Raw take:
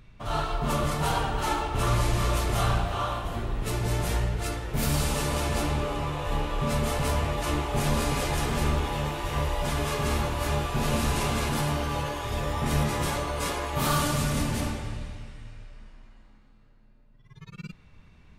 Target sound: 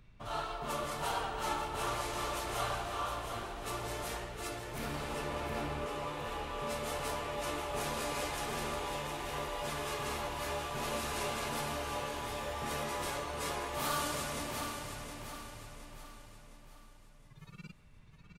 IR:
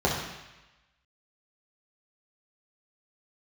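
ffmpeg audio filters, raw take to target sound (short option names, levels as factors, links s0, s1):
-filter_complex "[0:a]asettb=1/sr,asplit=3[s0][s1][s2];[s0]atrim=end=4.784[s3];[s1]atrim=start=4.78:end=5.86,asetpts=PTS-STARTPTS,afade=t=in:d=0.004:c=qsin,afade=t=out:st=1.076:d=0.004:c=qsin,bass=f=250:g=11,treble=f=4000:g=-13[s4];[s2]atrim=start=5.856[s5];[s3][s4]acrossfade=d=0.004:c1=hsin:c2=qsin[s6];[s6][s5]acrossfade=d=0.004:c1=qsin:c2=hsin,acrossover=split=310[s7][s8];[s7]acompressor=threshold=0.0112:ratio=6[s9];[s9][s8]amix=inputs=2:normalize=0,aecho=1:1:714|1428|2142|2856|3570:0.422|0.181|0.078|0.0335|0.0144,volume=0.422"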